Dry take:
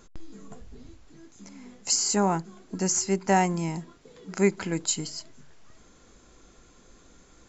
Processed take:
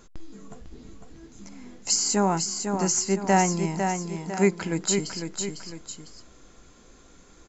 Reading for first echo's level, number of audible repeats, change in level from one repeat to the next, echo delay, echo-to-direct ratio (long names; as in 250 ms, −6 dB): −6.0 dB, 2, −7.0 dB, 502 ms, −5.0 dB